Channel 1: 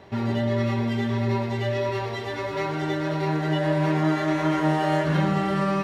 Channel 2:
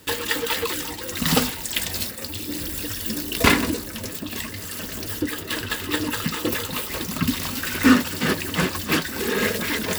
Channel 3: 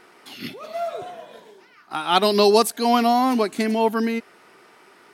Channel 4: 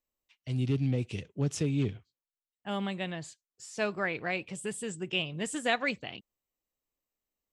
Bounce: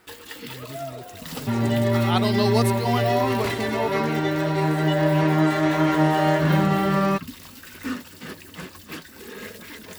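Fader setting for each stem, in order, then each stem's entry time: +3.0, -15.0, -7.0, -11.5 dB; 1.35, 0.00, 0.00, 0.00 s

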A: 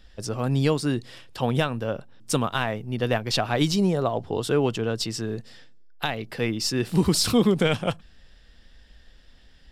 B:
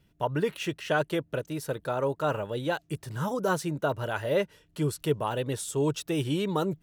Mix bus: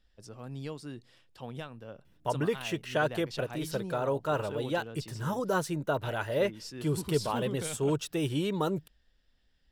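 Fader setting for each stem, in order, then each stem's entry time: -17.5, -2.0 dB; 0.00, 2.05 s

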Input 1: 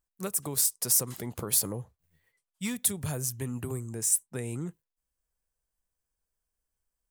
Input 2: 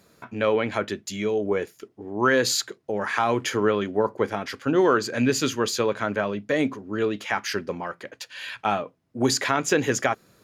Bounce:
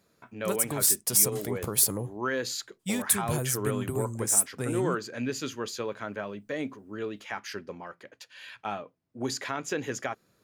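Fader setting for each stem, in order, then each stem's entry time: +2.5, -10.0 dB; 0.25, 0.00 s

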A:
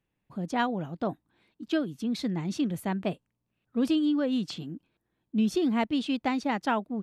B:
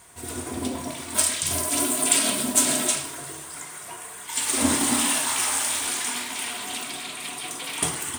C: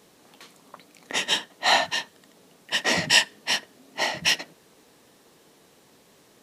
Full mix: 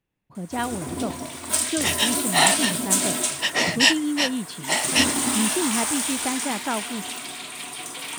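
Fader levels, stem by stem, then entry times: 0.0, -1.0, +1.0 dB; 0.00, 0.35, 0.70 s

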